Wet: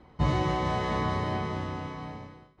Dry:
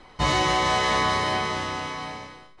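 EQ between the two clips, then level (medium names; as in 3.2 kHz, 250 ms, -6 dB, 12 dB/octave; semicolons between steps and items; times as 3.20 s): high-pass 98 Hz 12 dB/octave; tilt EQ -3.5 dB/octave; bass shelf 180 Hz +4.5 dB; -8.5 dB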